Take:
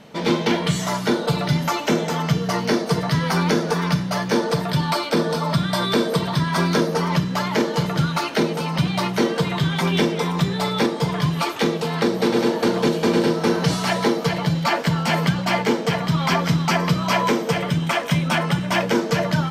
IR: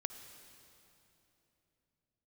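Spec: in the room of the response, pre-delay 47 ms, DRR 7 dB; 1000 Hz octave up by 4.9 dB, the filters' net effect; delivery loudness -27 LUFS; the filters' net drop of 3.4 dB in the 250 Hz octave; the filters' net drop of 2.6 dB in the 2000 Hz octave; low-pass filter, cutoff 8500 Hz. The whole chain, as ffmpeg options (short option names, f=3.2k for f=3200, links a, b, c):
-filter_complex "[0:a]lowpass=8.5k,equalizer=f=250:t=o:g=-6,equalizer=f=1k:t=o:g=7.5,equalizer=f=2k:t=o:g=-6,asplit=2[a][b];[1:a]atrim=start_sample=2205,adelay=47[c];[b][c]afir=irnorm=-1:irlink=0,volume=-5.5dB[d];[a][d]amix=inputs=2:normalize=0,volume=-7dB"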